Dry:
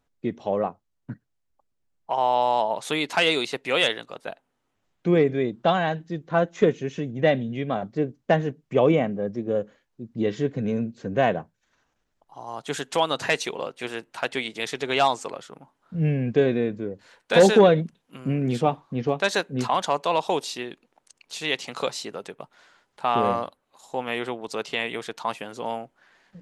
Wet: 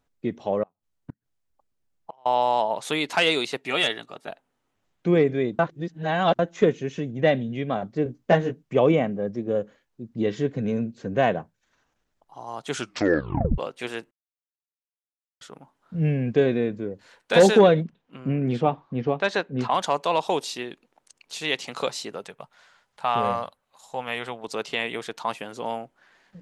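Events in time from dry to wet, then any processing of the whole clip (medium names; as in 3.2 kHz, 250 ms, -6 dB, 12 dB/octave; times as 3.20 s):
0.63–2.26 s: inverted gate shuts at -24 dBFS, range -33 dB
3.58–4.29 s: comb of notches 510 Hz
5.59–6.39 s: reverse
8.04–8.63 s: doubling 17 ms -3 dB
12.70 s: tape stop 0.88 s
14.11–15.41 s: mute
17.83–19.71 s: Bessel low-pass 3.1 kHz
22.24–24.44 s: peaking EQ 320 Hz -11.5 dB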